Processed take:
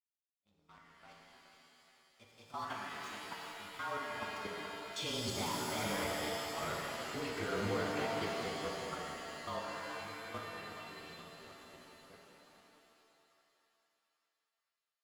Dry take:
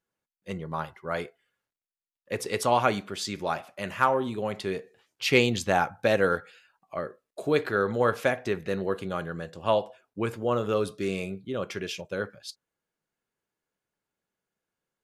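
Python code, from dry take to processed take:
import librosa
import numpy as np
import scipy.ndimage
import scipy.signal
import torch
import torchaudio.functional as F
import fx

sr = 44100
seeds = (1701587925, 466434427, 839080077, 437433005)

y = fx.partial_stretch(x, sr, pct=109)
y = fx.doppler_pass(y, sr, speed_mps=18, closest_m=1.0, pass_at_s=6.4)
y = scipy.signal.sosfilt(scipy.signal.butter(2, 6500.0, 'lowpass', fs=sr, output='sos'), y)
y = fx.low_shelf(y, sr, hz=410.0, db=-6.0)
y = fx.notch(y, sr, hz=1800.0, q=5.2)
y = y + 0.43 * np.pad(y, (int(0.9 * sr / 1000.0), 0))[:len(y)]
y = fx.leveller(y, sr, passes=3)
y = fx.level_steps(y, sr, step_db=18)
y = fx.echo_thinned(y, sr, ms=423, feedback_pct=62, hz=490.0, wet_db=-10.0)
y = fx.rev_shimmer(y, sr, seeds[0], rt60_s=2.4, semitones=7, shimmer_db=-2, drr_db=-1.0)
y = y * librosa.db_to_amplitude(13.0)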